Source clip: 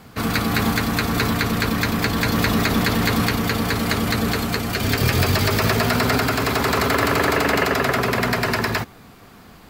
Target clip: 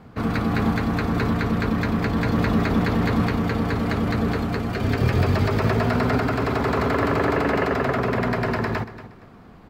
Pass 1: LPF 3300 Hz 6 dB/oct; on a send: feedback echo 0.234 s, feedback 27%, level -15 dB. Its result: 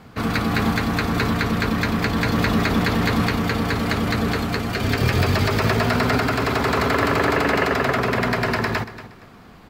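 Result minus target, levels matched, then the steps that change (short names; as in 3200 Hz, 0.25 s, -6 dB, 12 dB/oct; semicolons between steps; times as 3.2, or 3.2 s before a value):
4000 Hz band +6.5 dB
change: LPF 970 Hz 6 dB/oct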